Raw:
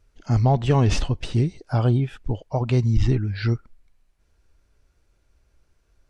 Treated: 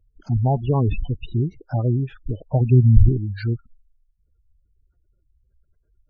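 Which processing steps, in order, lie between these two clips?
0:02.40–0:03.09: low-shelf EQ 330 Hz +9 dB
gate on every frequency bin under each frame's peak −20 dB strong
level −1 dB

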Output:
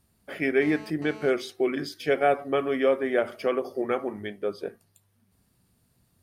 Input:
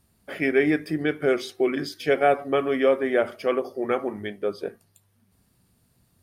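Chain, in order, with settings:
0:00.62–0:01.30: phone interference −42 dBFS
0:03.18–0:03.82: multiband upward and downward compressor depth 70%
level −2.5 dB

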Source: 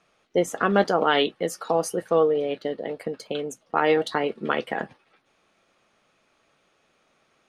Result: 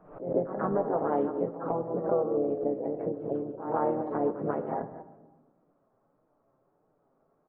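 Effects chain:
delay that plays each chunk backwards 132 ms, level −13 dB
low-pass filter 1,000 Hz 24 dB per octave
downward compressor 3 to 1, threshold −22 dBFS, peak gain reduction 7 dB
flanger 1.6 Hz, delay 6.3 ms, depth 1.5 ms, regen −11%
pitch-shifted copies added −5 semitones −9 dB, +3 semitones −11 dB
backwards echo 143 ms −14.5 dB
on a send at −11.5 dB: convolution reverb RT60 1.3 s, pre-delay 3 ms
on the sum: background raised ahead of every attack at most 100 dB per second

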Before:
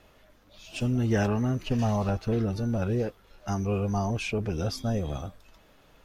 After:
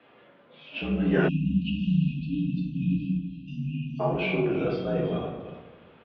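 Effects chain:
mains-hum notches 50/100/150/200/250/300 Hz
far-end echo of a speakerphone 330 ms, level −14 dB
convolution reverb RT60 1.1 s, pre-delay 6 ms, DRR −3.5 dB
time-frequency box erased 0:01.28–0:04.00, 360–2,500 Hz
single-sideband voice off tune −55 Hz 210–3,400 Hz

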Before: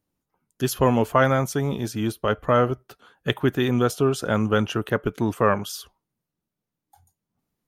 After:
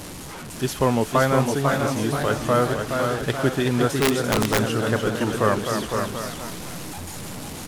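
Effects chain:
linear delta modulator 64 kbit/s, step −29 dBFS
on a send: single-tap delay 509 ms −6 dB
on the sum: delay with pitch and tempo change per echo 560 ms, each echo +1 semitone, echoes 3, each echo −6 dB
0:03.99–0:04.63: wrap-around overflow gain 11 dB
level −1 dB

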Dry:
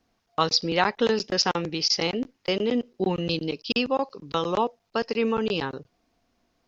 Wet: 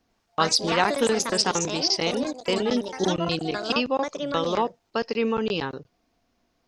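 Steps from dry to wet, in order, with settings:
delay with pitch and tempo change per echo 96 ms, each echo +4 semitones, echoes 3, each echo −6 dB

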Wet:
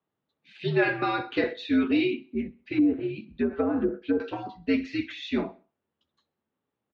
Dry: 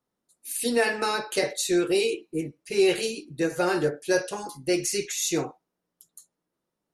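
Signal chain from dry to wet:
0:02.57–0:04.20: treble cut that deepens with the level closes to 510 Hz, closed at −19 dBFS
repeating echo 65 ms, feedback 46%, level −23 dB
single-sideband voice off tune −88 Hz 210–3,600 Hz

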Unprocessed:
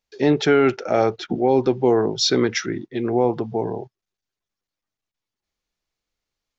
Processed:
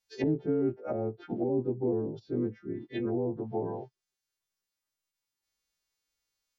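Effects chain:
every partial snapped to a pitch grid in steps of 2 semitones
treble cut that deepens with the level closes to 340 Hz, closed at −18 dBFS
level −7 dB

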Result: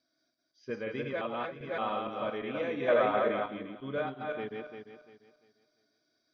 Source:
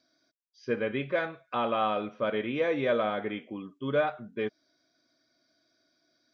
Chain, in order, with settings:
feedback delay that plays each chunk backwards 173 ms, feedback 53%, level −2 dB
0:01.21–0:01.78: reverse
0:02.88–0:03.48: parametric band 950 Hz +10 dB 2.1 octaves
level −7.5 dB

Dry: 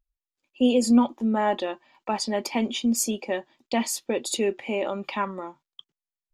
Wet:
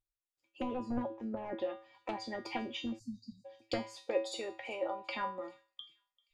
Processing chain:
wavefolder on the positive side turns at −16.5 dBFS
0:03.97–0:05.09: low shelf with overshoot 380 Hz −9.5 dB, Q 1.5
treble cut that deepens with the level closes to 960 Hz, closed at −21 dBFS
harmonic and percussive parts rebalanced harmonic −9 dB
tuned comb filter 110 Hz, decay 0.35 s, harmonics odd, mix 90%
delay with a high-pass on its return 393 ms, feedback 42%, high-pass 4,200 Hz, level −20 dB
dynamic equaliser 1,300 Hz, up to −5 dB, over −55 dBFS, Q 0.84
0:02.99–0:03.45: time-frequency box erased 270–3,700 Hz
level +10 dB

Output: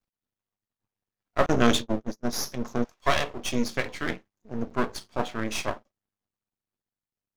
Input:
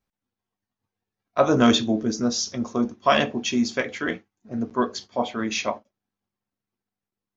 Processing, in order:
0:01.46–0:02.33: noise gate −22 dBFS, range −38 dB
0:02.83–0:03.44: high-pass filter 810 Hz → 270 Hz 24 dB per octave
half-wave rectification

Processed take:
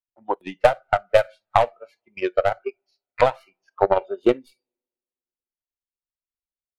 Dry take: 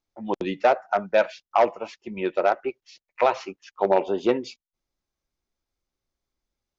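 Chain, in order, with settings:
stylus tracing distortion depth 0.14 ms
parametric band 5,800 Hz −10.5 dB 0.74 octaves
coupled-rooms reverb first 0.45 s, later 1.8 s, from −19 dB, DRR 13 dB
noise reduction from a noise print of the clip's start 19 dB
transient designer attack +12 dB, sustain −5 dB
level −6 dB

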